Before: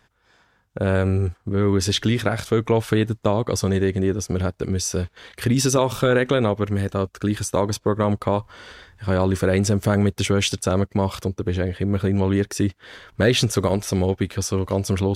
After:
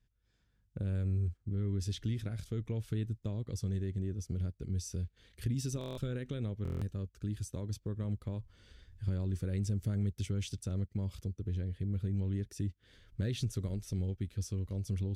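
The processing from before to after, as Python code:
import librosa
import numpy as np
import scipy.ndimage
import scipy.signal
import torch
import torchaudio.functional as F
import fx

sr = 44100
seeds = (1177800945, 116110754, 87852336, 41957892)

y = fx.recorder_agc(x, sr, target_db=-11.5, rise_db_per_s=8.9, max_gain_db=30)
y = fx.tone_stack(y, sr, knobs='10-0-1')
y = fx.buffer_glitch(y, sr, at_s=(5.79, 6.63), block=1024, repeats=7)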